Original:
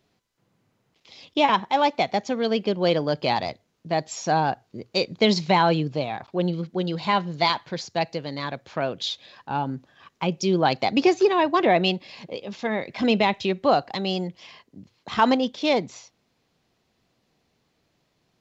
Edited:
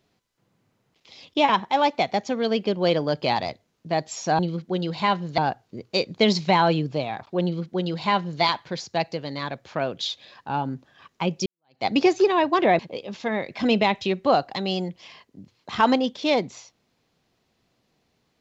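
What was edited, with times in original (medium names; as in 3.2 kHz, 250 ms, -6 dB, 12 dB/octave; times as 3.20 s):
6.44–7.43 s: copy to 4.39 s
10.47–10.86 s: fade in exponential
11.80–12.18 s: delete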